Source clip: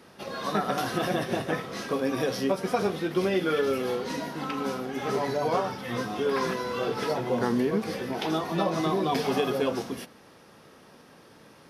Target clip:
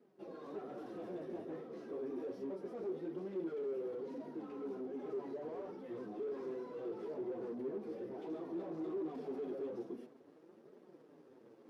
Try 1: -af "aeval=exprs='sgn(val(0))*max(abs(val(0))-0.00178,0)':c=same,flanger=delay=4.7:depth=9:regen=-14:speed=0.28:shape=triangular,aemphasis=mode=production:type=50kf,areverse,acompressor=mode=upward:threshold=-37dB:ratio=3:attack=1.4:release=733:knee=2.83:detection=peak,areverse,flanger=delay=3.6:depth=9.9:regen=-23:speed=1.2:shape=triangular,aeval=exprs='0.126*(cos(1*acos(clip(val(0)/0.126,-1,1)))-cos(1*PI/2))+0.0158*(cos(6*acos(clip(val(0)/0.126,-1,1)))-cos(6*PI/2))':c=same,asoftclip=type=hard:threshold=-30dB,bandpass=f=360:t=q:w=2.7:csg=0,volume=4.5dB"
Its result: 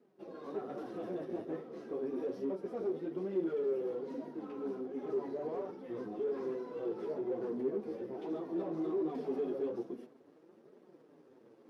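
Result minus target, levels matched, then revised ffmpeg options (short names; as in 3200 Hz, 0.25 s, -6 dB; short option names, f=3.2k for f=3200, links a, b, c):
hard clip: distortion -6 dB
-af "aeval=exprs='sgn(val(0))*max(abs(val(0))-0.00178,0)':c=same,flanger=delay=4.7:depth=9:regen=-14:speed=0.28:shape=triangular,aemphasis=mode=production:type=50kf,areverse,acompressor=mode=upward:threshold=-37dB:ratio=3:attack=1.4:release=733:knee=2.83:detection=peak,areverse,flanger=delay=3.6:depth=9.9:regen=-23:speed=1.2:shape=triangular,aeval=exprs='0.126*(cos(1*acos(clip(val(0)/0.126,-1,1)))-cos(1*PI/2))+0.0158*(cos(6*acos(clip(val(0)/0.126,-1,1)))-cos(6*PI/2))':c=same,asoftclip=type=hard:threshold=-39dB,bandpass=f=360:t=q:w=2.7:csg=0,volume=4.5dB"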